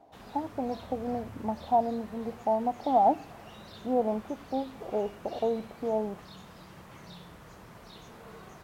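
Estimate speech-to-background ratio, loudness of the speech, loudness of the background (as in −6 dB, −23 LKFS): 17.5 dB, −31.0 LKFS, −48.5 LKFS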